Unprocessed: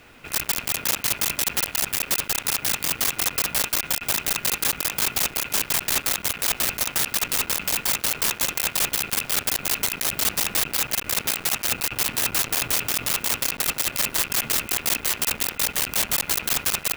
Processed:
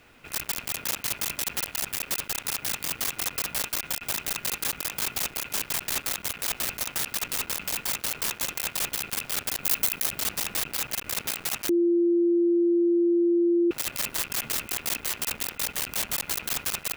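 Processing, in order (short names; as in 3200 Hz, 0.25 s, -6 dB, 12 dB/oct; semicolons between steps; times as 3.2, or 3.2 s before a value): 9.63–10.06 high shelf 9800 Hz +8.5 dB; 11.69–13.71 bleep 344 Hz -12.5 dBFS; gain -6 dB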